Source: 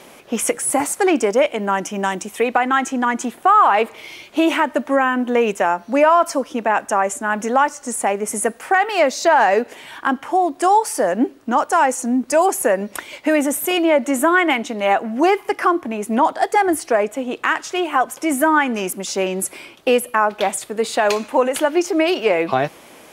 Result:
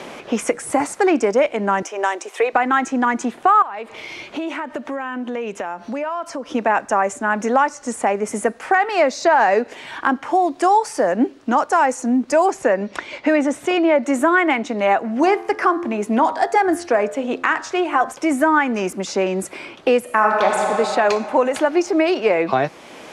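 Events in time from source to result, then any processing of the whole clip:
0:01.82–0:02.53: Butterworth high-pass 360 Hz
0:03.62–0:06.55: downward compressor 3 to 1, threshold −32 dBFS
0:12.50–0:14.03: low-pass filter 6,100 Hz
0:15.00–0:18.12: hum removal 86.58 Hz, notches 22
0:20.01–0:20.63: thrown reverb, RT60 3 s, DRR −0.5 dB
whole clip: low-pass filter 6,300 Hz 12 dB per octave; dynamic equaliser 3,100 Hz, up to −6 dB, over −44 dBFS, Q 3.6; multiband upward and downward compressor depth 40%

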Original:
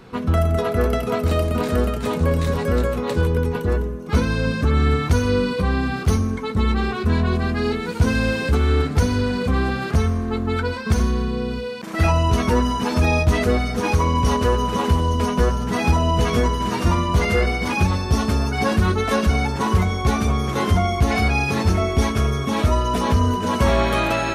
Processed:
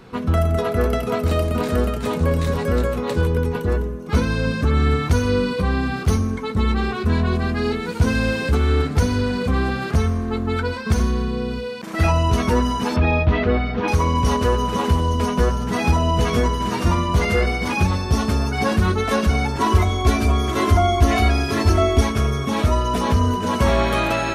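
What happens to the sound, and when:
0:12.96–0:13.88: low-pass filter 3,500 Hz 24 dB per octave
0:19.58–0:22.01: comb filter 3 ms, depth 85%

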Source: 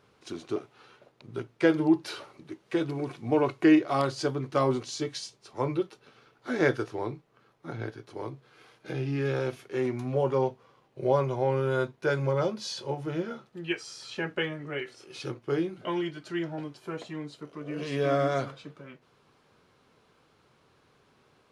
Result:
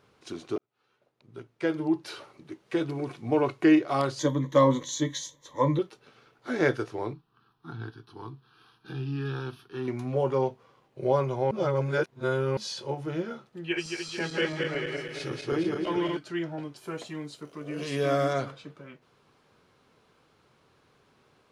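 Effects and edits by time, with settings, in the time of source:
0:00.58–0:02.61: fade in
0:04.19–0:05.79: EQ curve with evenly spaced ripples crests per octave 1.1, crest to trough 17 dB
0:07.13–0:09.88: phaser with its sweep stopped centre 2,100 Hz, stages 6
0:11.51–0:12.57: reverse
0:13.64–0:16.17: feedback delay that plays each chunk backwards 111 ms, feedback 73%, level −2.5 dB
0:16.76–0:18.33: high-shelf EQ 6,200 Hz +11.5 dB

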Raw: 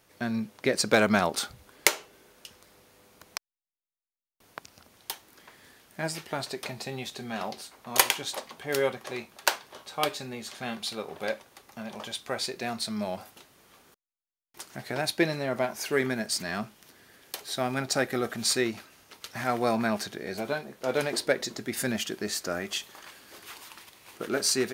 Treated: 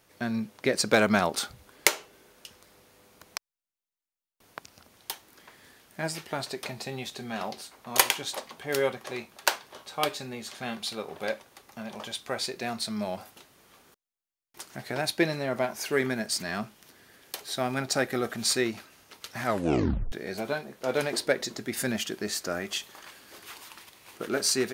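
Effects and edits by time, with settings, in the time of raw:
0:19.45: tape stop 0.67 s

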